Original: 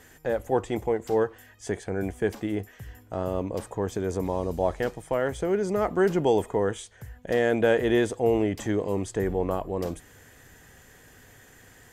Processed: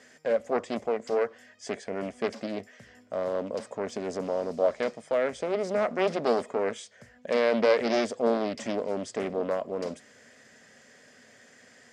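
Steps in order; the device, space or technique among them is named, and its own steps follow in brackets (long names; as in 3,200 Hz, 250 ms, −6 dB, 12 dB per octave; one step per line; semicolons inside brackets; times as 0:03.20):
full-range speaker at full volume (highs frequency-modulated by the lows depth 0.64 ms; loudspeaker in its box 230–8,400 Hz, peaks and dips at 230 Hz +9 dB, 330 Hz −8 dB, 590 Hz +8 dB, 870 Hz −6 dB, 2,100 Hz +4 dB, 5,000 Hz +8 dB)
level −2.5 dB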